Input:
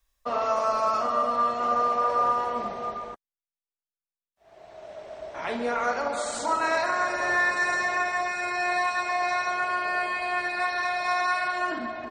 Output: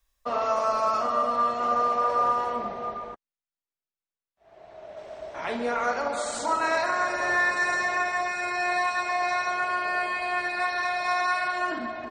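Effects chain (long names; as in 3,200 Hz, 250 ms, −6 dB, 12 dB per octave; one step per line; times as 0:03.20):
0:02.56–0:04.97: low-pass filter 3,200 Hz 6 dB per octave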